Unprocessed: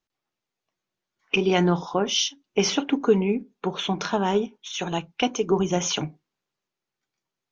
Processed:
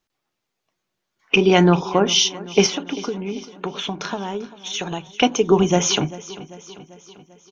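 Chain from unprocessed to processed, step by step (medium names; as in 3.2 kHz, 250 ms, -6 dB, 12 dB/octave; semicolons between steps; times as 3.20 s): 2.66–5.07 s: compression 10:1, threshold -30 dBFS, peak gain reduction 17 dB; feedback delay 393 ms, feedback 56%, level -18 dB; trim +6.5 dB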